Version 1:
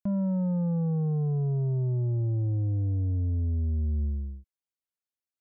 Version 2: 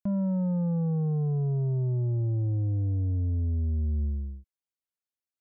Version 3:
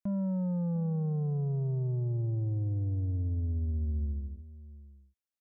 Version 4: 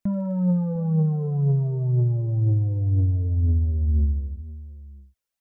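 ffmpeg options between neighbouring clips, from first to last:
-af anull
-filter_complex "[0:a]asplit=2[a][b];[b]adelay=699.7,volume=-17dB,highshelf=f=4k:g=-15.7[c];[a][c]amix=inputs=2:normalize=0,volume=-4dB"
-af "aphaser=in_gain=1:out_gain=1:delay=2.3:decay=0.48:speed=2:type=triangular,volume=6.5dB"

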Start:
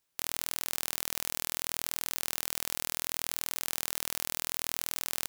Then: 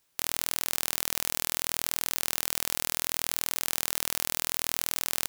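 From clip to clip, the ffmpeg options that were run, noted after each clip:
-af "acontrast=53,volume=1.5dB"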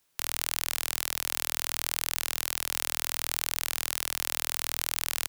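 -filter_complex "[0:a]acrossover=split=100|540|5200[a][b][c][d];[b]alimiter=level_in=20.5dB:limit=-24dB:level=0:latency=1,volume=-20.5dB[e];[a][e][c][d]amix=inputs=4:normalize=0,asoftclip=type=hard:threshold=-7dB"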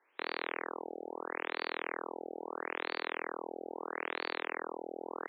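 -af "aeval=exprs='(mod(7.94*val(0)+1,2)-1)/7.94':c=same,highpass=f=360:w=0.5412,highpass=f=360:w=1.3066,equalizer=f=630:t=q:w=4:g=-5,equalizer=f=1.4k:t=q:w=4:g=-4,equalizer=f=3k:t=q:w=4:g=-7,lowpass=f=6.4k:w=0.5412,lowpass=f=6.4k:w=1.3066,afftfilt=real='re*lt(b*sr/1024,810*pow(4600/810,0.5+0.5*sin(2*PI*0.76*pts/sr)))':imag='im*lt(b*sr/1024,810*pow(4600/810,0.5+0.5*sin(2*PI*0.76*pts/sr)))':win_size=1024:overlap=0.75,volume=10dB"

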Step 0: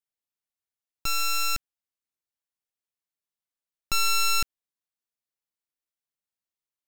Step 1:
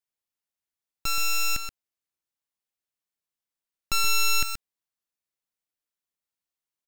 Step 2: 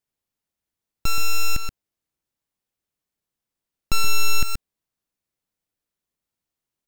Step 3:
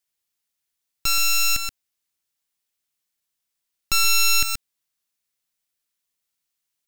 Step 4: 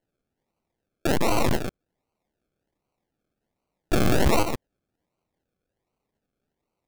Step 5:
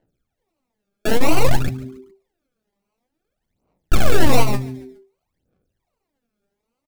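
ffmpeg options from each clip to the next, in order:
-af "aecho=1:1:127:0.376"
-filter_complex "[0:a]lowshelf=f=500:g=10.5,asplit=2[a][b];[b]alimiter=limit=-19dB:level=0:latency=1:release=159,volume=-0.5dB[c];[a][c]amix=inputs=2:normalize=0,volume=-3dB"
-af "tiltshelf=f=1.2k:g=-7.5"
-af "acrusher=samples=36:mix=1:aa=0.000001:lfo=1:lforange=21.6:lforate=1.3,volume=-1.5dB"
-filter_complex "[0:a]aphaser=in_gain=1:out_gain=1:delay=5:decay=0.8:speed=0.54:type=sinusoidal,asplit=4[a][b][c][d];[b]adelay=139,afreqshift=-130,volume=-19dB[e];[c]adelay=278,afreqshift=-260,volume=-26.5dB[f];[d]adelay=417,afreqshift=-390,volume=-34.1dB[g];[a][e][f][g]amix=inputs=4:normalize=0"

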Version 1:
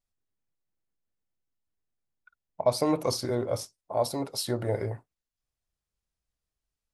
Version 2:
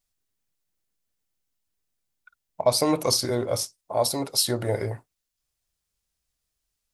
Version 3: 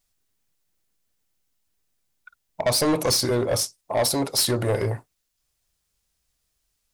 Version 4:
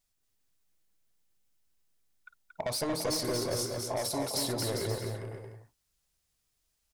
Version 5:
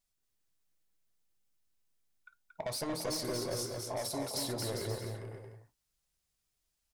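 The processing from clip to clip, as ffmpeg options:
-af "highshelf=f=2.5k:g=9,volume=2.5dB"
-af "asoftclip=type=tanh:threshold=-22.5dB,volume=6dB"
-af "acompressor=threshold=-26dB:ratio=6,aecho=1:1:230|402.5|531.9|628.9|701.7:0.631|0.398|0.251|0.158|0.1,volume=-5.5dB"
-af "flanger=delay=5.2:depth=3.8:regen=-74:speed=0.31:shape=sinusoidal"

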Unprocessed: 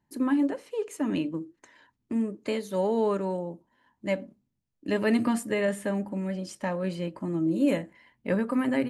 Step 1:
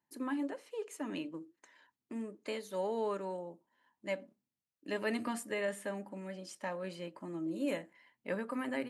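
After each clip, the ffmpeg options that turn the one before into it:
-af "highpass=f=490:p=1,volume=-6dB"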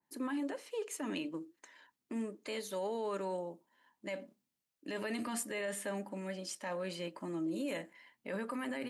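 -af "equalizer=f=99:t=o:w=0.82:g=-6,alimiter=level_in=9.5dB:limit=-24dB:level=0:latency=1:release=28,volume=-9.5dB,adynamicequalizer=threshold=0.00158:dfrequency=2100:dqfactor=0.7:tfrequency=2100:tqfactor=0.7:attack=5:release=100:ratio=0.375:range=2:mode=boostabove:tftype=highshelf,volume=3dB"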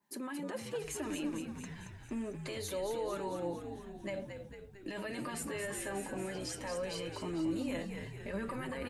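-filter_complex "[0:a]alimiter=level_in=13dB:limit=-24dB:level=0:latency=1:release=43,volume=-13dB,flanger=delay=4.9:depth=3.2:regen=35:speed=0.24:shape=triangular,asplit=2[a][b];[b]asplit=8[c][d][e][f][g][h][i][j];[c]adelay=225,afreqshift=-67,volume=-7dB[k];[d]adelay=450,afreqshift=-134,volume=-11.2dB[l];[e]adelay=675,afreqshift=-201,volume=-15.3dB[m];[f]adelay=900,afreqshift=-268,volume=-19.5dB[n];[g]adelay=1125,afreqshift=-335,volume=-23.6dB[o];[h]adelay=1350,afreqshift=-402,volume=-27.8dB[p];[i]adelay=1575,afreqshift=-469,volume=-31.9dB[q];[j]adelay=1800,afreqshift=-536,volume=-36.1dB[r];[k][l][m][n][o][p][q][r]amix=inputs=8:normalize=0[s];[a][s]amix=inputs=2:normalize=0,volume=9dB"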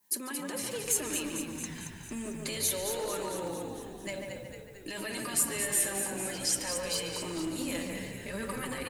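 -filter_complex "[0:a]asplit=2[a][b];[b]adelay=144,lowpass=f=1.8k:p=1,volume=-3dB,asplit=2[c][d];[d]adelay=144,lowpass=f=1.8k:p=1,volume=0.51,asplit=2[e][f];[f]adelay=144,lowpass=f=1.8k:p=1,volume=0.51,asplit=2[g][h];[h]adelay=144,lowpass=f=1.8k:p=1,volume=0.51,asplit=2[i][j];[j]adelay=144,lowpass=f=1.8k:p=1,volume=0.51,asplit=2[k][l];[l]adelay=144,lowpass=f=1.8k:p=1,volume=0.51,asplit=2[m][n];[n]adelay=144,lowpass=f=1.8k:p=1,volume=0.51[o];[a][c][e][g][i][k][m][o]amix=inputs=8:normalize=0,aeval=exprs='clip(val(0),-1,0.0299)':c=same,crystalizer=i=5.5:c=0,volume=-1dB"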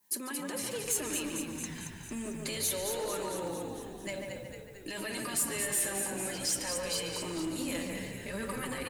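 -af "asoftclip=type=tanh:threshold=-23.5dB"

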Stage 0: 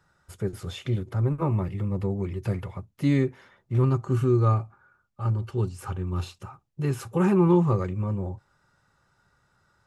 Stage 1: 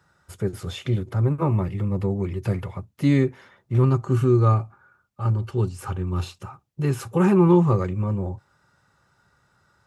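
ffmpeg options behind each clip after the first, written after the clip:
-af "highpass=52,volume=3.5dB"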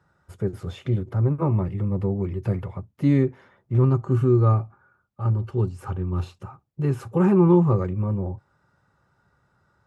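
-af "highshelf=f=2k:g=-11.5"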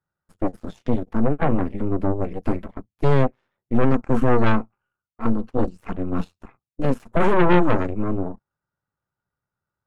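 -af "aeval=exprs='0.422*(cos(1*acos(clip(val(0)/0.422,-1,1)))-cos(1*PI/2))+0.119*(cos(3*acos(clip(val(0)/0.422,-1,1)))-cos(3*PI/2))+0.119*(cos(4*acos(clip(val(0)/0.422,-1,1)))-cos(4*PI/2))+0.00376*(cos(7*acos(clip(val(0)/0.422,-1,1)))-cos(7*PI/2))+0.0841*(cos(8*acos(clip(val(0)/0.422,-1,1)))-cos(8*PI/2))':c=same"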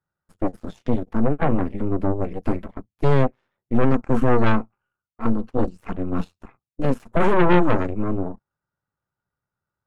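-af anull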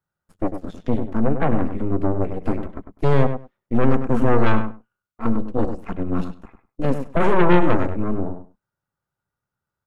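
-filter_complex "[0:a]asplit=2[a][b];[b]adelay=100,lowpass=f=2.2k:p=1,volume=-8dB,asplit=2[c][d];[d]adelay=100,lowpass=f=2.2k:p=1,volume=0.15[e];[a][c][e]amix=inputs=3:normalize=0"

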